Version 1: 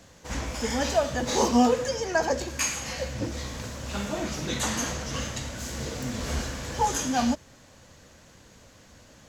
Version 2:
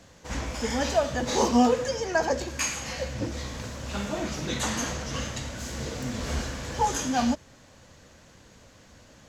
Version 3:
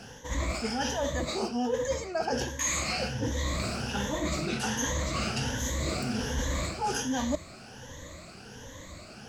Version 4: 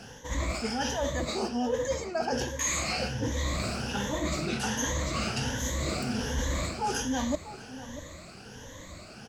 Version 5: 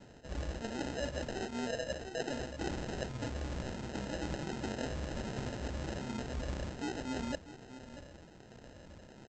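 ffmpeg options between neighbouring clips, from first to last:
ffmpeg -i in.wav -af "highshelf=frequency=9900:gain=-6.5" out.wav
ffmpeg -i in.wav -af "afftfilt=real='re*pow(10,14/40*sin(2*PI*(1.1*log(max(b,1)*sr/1024/100)/log(2)-(1.3)*(pts-256)/sr)))':imag='im*pow(10,14/40*sin(2*PI*(1.1*log(max(b,1)*sr/1024/100)/log(2)-(1.3)*(pts-256)/sr)))':win_size=1024:overlap=0.75,areverse,acompressor=threshold=-32dB:ratio=16,areverse,volume=5.5dB" out.wav
ffmpeg -i in.wav -filter_complex "[0:a]asplit=2[link_01][link_02];[link_02]adelay=641.4,volume=-14dB,highshelf=frequency=4000:gain=-14.4[link_03];[link_01][link_03]amix=inputs=2:normalize=0" out.wav
ffmpeg -i in.wav -af "aresample=16000,acrusher=samples=14:mix=1:aa=0.000001,aresample=44100,tremolo=f=130:d=0.462,volume=-6dB" out.wav

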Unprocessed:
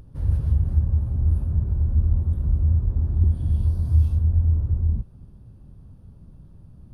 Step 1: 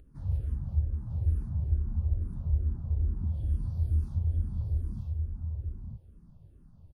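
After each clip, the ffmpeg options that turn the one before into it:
ffmpeg -i in.wav -filter_complex "[0:a]asplit=2[link_01][link_02];[link_02]aecho=0:1:945:0.631[link_03];[link_01][link_03]amix=inputs=2:normalize=0,asplit=2[link_04][link_05];[link_05]afreqshift=-2.3[link_06];[link_04][link_06]amix=inputs=2:normalize=1,volume=-7dB" out.wav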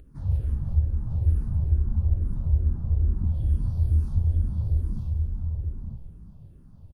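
ffmpeg -i in.wav -filter_complex "[0:a]asplit=7[link_01][link_02][link_03][link_04][link_05][link_06][link_07];[link_02]adelay=181,afreqshift=-46,volume=-10.5dB[link_08];[link_03]adelay=362,afreqshift=-92,volume=-16.2dB[link_09];[link_04]adelay=543,afreqshift=-138,volume=-21.9dB[link_10];[link_05]adelay=724,afreqshift=-184,volume=-27.5dB[link_11];[link_06]adelay=905,afreqshift=-230,volume=-33.2dB[link_12];[link_07]adelay=1086,afreqshift=-276,volume=-38.9dB[link_13];[link_01][link_08][link_09][link_10][link_11][link_12][link_13]amix=inputs=7:normalize=0,volume=5.5dB" out.wav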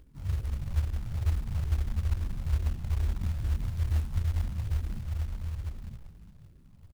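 ffmpeg -i in.wav -af "acrusher=bits=5:mode=log:mix=0:aa=0.000001,volume=-6dB" out.wav

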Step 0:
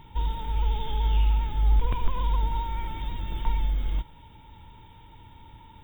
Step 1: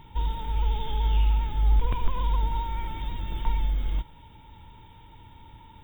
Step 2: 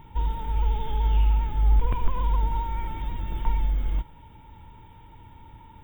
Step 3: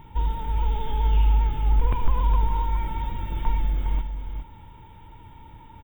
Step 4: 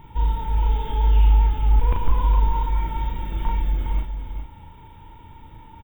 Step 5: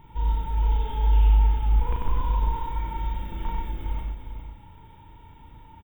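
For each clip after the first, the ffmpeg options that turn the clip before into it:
ffmpeg -i in.wav -af anull out.wav
ffmpeg -i in.wav -af "equalizer=frequency=4300:width_type=o:width=0.82:gain=-12.5,volume=1.5dB" out.wav
ffmpeg -i in.wav -af "aecho=1:1:411:0.376,volume=1.5dB" out.wav
ffmpeg -i in.wav -filter_complex "[0:a]asplit=2[link_01][link_02];[link_02]adelay=37,volume=-3dB[link_03];[link_01][link_03]amix=inputs=2:normalize=0" out.wav
ffmpeg -i in.wav -af "aecho=1:1:95:0.631,volume=-5.5dB" out.wav

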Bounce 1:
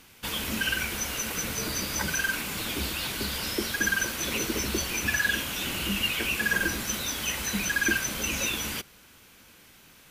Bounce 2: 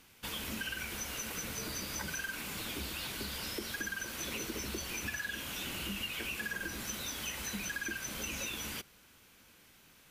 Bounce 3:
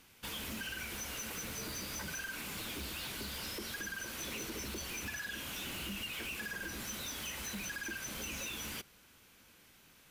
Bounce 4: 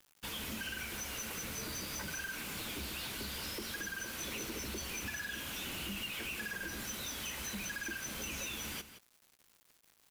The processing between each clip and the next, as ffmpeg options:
ffmpeg -i in.wav -af "acompressor=threshold=-28dB:ratio=6,volume=-7dB" out.wav
ffmpeg -i in.wav -af "asoftclip=type=hard:threshold=-36dB,volume=-1dB" out.wav
ffmpeg -i in.wav -af "acrusher=bits=8:mix=0:aa=0.000001,aecho=1:1:171:0.224" out.wav

